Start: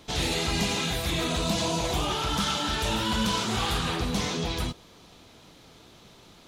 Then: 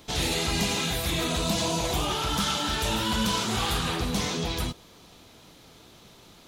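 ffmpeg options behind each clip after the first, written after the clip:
-af "highshelf=f=11k:g=9"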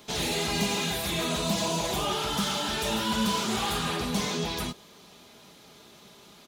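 -filter_complex "[0:a]highpass=f=150:p=1,aecho=1:1:4.9:0.39,acrossover=split=930[a][b];[b]asoftclip=type=tanh:threshold=-26dB[c];[a][c]amix=inputs=2:normalize=0"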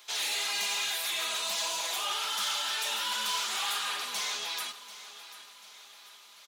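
-af "highpass=1.2k,aecho=1:1:740|1480|2220|2960:0.178|0.0836|0.0393|0.0185"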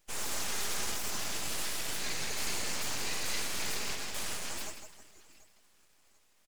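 -af "aecho=1:1:161|322|483|644|805:0.447|0.188|0.0788|0.0331|0.0139,afftdn=nr=14:nf=-40,aeval=exprs='abs(val(0))':c=same"

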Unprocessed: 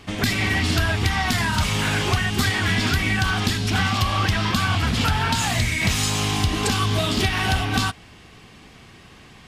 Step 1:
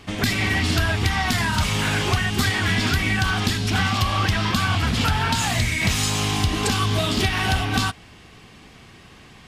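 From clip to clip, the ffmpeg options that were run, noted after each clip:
-af anull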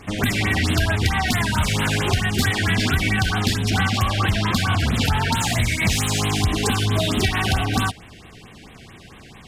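-filter_complex "[0:a]asplit=2[a][b];[b]asoftclip=type=tanh:threshold=-26dB,volume=-6dB[c];[a][c]amix=inputs=2:normalize=0,afftfilt=real='re*(1-between(b*sr/1024,970*pow(5900/970,0.5+0.5*sin(2*PI*4.5*pts/sr))/1.41,970*pow(5900/970,0.5+0.5*sin(2*PI*4.5*pts/sr))*1.41))':imag='im*(1-between(b*sr/1024,970*pow(5900/970,0.5+0.5*sin(2*PI*4.5*pts/sr))/1.41,970*pow(5900/970,0.5+0.5*sin(2*PI*4.5*pts/sr))*1.41))':win_size=1024:overlap=0.75"

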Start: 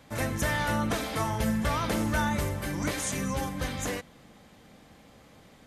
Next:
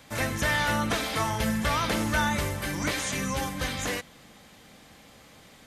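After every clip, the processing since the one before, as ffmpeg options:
-filter_complex "[0:a]tiltshelf=f=1.3k:g=-4,acrossover=split=5100[a][b];[b]acompressor=threshold=-41dB:ratio=4:attack=1:release=60[c];[a][c]amix=inputs=2:normalize=0,volume=3.5dB"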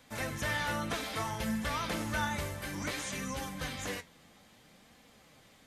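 -af "flanger=delay=4:depth=8.1:regen=64:speed=0.6:shape=sinusoidal,volume=-3.5dB"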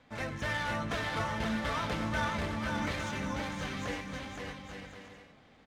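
-filter_complex "[0:a]adynamicsmooth=sensitivity=7.5:basefreq=3.2k,asplit=2[a][b];[b]aecho=0:1:520|858|1078|1221|1313:0.631|0.398|0.251|0.158|0.1[c];[a][c]amix=inputs=2:normalize=0"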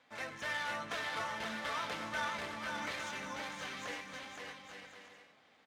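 -af "highpass=f=760:p=1,volume=-2dB"

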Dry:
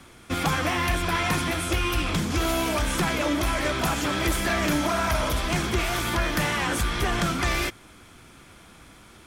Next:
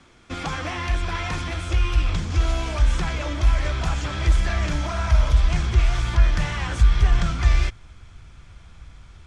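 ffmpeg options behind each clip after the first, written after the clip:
-af "lowpass=f=7.5k:w=0.5412,lowpass=f=7.5k:w=1.3066,asubboost=boost=11:cutoff=83,volume=-4dB"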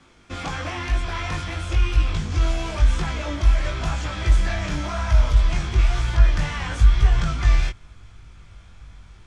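-af "flanger=delay=19:depth=2.6:speed=0.98,volume=2.5dB"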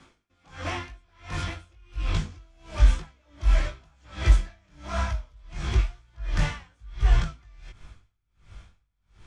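-af "aeval=exprs='val(0)*pow(10,-36*(0.5-0.5*cos(2*PI*1.4*n/s))/20)':c=same"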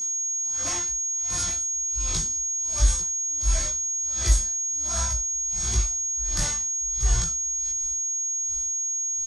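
-filter_complex "[0:a]aeval=exprs='val(0)+0.00891*sin(2*PI*6600*n/s)':c=same,aexciter=amount=6.5:drive=6.4:freq=4k,asplit=2[a][b];[b]adelay=17,volume=-6dB[c];[a][c]amix=inputs=2:normalize=0,volume=-5dB"

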